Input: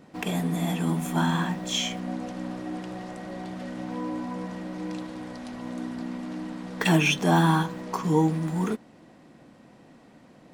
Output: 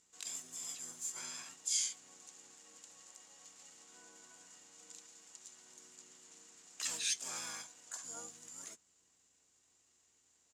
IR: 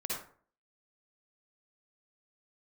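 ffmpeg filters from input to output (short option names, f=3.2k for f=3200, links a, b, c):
-filter_complex "[0:a]aeval=exprs='val(0)+0.00708*(sin(2*PI*60*n/s)+sin(2*PI*2*60*n/s)/2+sin(2*PI*3*60*n/s)/3+sin(2*PI*4*60*n/s)/4+sin(2*PI*5*60*n/s)/5)':c=same,asplit=3[a][b][c];[b]asetrate=29433,aresample=44100,atempo=1.49831,volume=-3dB[d];[c]asetrate=66075,aresample=44100,atempo=0.66742,volume=-1dB[e];[a][d][e]amix=inputs=3:normalize=0,bandpass=f=7.1k:t=q:w=7.4:csg=0,volume=5dB"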